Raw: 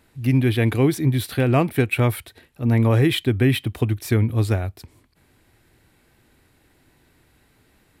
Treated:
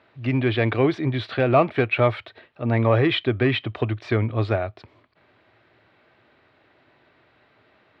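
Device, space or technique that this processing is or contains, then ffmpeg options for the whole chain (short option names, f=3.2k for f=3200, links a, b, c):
overdrive pedal into a guitar cabinet: -filter_complex "[0:a]asplit=2[a][b];[b]highpass=f=720:p=1,volume=10dB,asoftclip=type=tanh:threshold=-7dB[c];[a][c]amix=inputs=2:normalize=0,lowpass=f=4k:p=1,volume=-6dB,highpass=87,equalizer=f=110:t=q:w=4:g=5,equalizer=f=380:t=q:w=4:g=3,equalizer=f=620:t=q:w=4:g=9,equalizer=f=1.2k:t=q:w=4:g=5,lowpass=f=4k:w=0.5412,lowpass=f=4k:w=1.3066,volume=-2.5dB"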